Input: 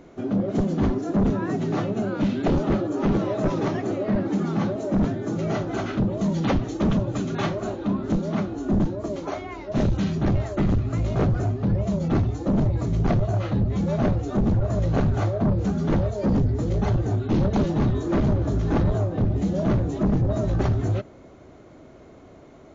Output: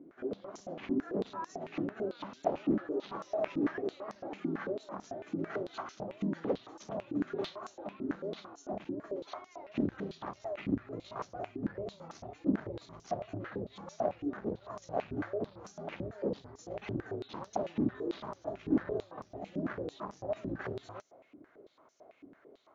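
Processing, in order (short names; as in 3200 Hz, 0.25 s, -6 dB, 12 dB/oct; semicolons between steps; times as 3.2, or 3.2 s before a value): stepped band-pass 9 Hz 290–5900 Hz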